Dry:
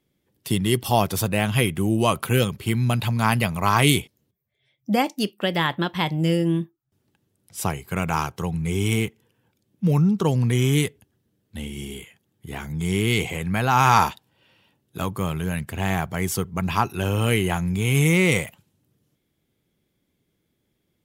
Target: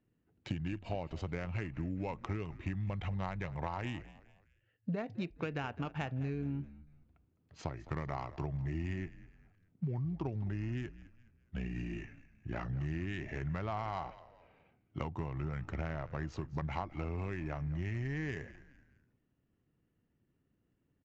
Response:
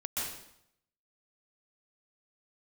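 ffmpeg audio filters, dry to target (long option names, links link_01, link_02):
-filter_complex "[0:a]acompressor=threshold=-29dB:ratio=20,acrusher=bits=9:mode=log:mix=0:aa=0.000001,adynamicsmooth=sensitivity=3:basefreq=2300,asetrate=37084,aresample=44100,atempo=1.18921,asplit=2[link_01][link_02];[link_02]asplit=3[link_03][link_04][link_05];[link_03]adelay=209,afreqshift=-66,volume=-17dB[link_06];[link_04]adelay=418,afreqshift=-132,volume=-24.7dB[link_07];[link_05]adelay=627,afreqshift=-198,volume=-32.5dB[link_08];[link_06][link_07][link_08]amix=inputs=3:normalize=0[link_09];[link_01][link_09]amix=inputs=2:normalize=0,aresample=16000,aresample=44100,volume=-4dB"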